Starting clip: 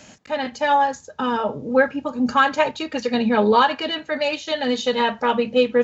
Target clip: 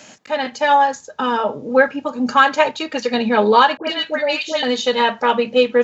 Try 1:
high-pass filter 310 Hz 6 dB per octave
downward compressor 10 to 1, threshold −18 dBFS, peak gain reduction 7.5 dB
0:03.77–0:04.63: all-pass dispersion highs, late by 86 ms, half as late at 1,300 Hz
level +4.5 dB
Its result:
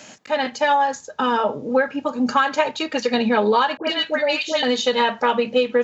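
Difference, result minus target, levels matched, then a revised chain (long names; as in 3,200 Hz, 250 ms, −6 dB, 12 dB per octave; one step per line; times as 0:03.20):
downward compressor: peak gain reduction +7.5 dB
high-pass filter 310 Hz 6 dB per octave
0:03.77–0:04.63: all-pass dispersion highs, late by 86 ms, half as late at 1,300 Hz
level +4.5 dB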